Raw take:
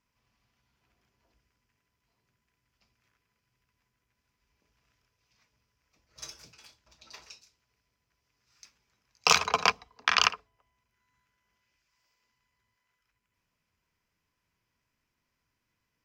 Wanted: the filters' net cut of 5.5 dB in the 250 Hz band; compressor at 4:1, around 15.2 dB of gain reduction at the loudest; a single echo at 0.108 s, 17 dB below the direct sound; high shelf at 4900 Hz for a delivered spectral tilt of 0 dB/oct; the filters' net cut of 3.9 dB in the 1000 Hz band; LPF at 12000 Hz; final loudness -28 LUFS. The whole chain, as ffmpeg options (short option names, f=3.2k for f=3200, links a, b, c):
-af "lowpass=12k,equalizer=f=250:t=o:g=-8.5,equalizer=f=1k:t=o:g=-4,highshelf=f=4.9k:g=-8,acompressor=threshold=-39dB:ratio=4,aecho=1:1:108:0.141,volume=17.5dB"